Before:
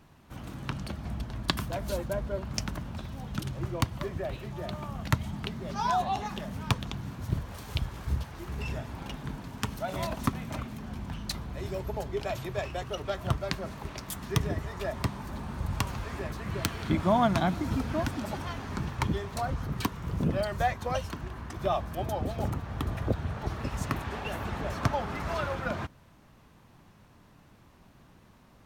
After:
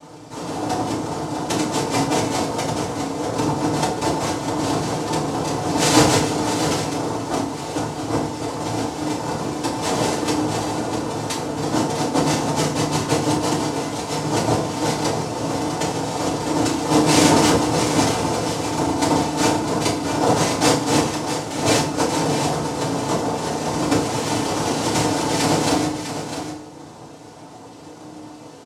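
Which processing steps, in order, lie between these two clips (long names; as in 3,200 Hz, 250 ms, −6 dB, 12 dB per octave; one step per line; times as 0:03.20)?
each half-wave held at its own peak
comb filter 5.4 ms, depth 92%
in parallel at 0 dB: downward compressor, threshold −36 dBFS, peak gain reduction 21.5 dB
on the sum: wrap-around overflow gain 13 dB
cochlear-implant simulation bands 2
on a send: single-tap delay 652 ms −9 dB
on the sum: feedback delay network reverb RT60 0.52 s, low-frequency decay 1.55×, high-frequency decay 0.8×, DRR −5.5 dB
level −4 dB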